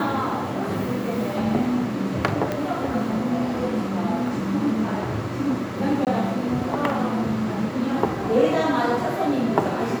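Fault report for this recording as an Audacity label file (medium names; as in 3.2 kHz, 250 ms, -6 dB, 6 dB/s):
2.520000	2.520000	pop -12 dBFS
6.050000	6.070000	dropout 18 ms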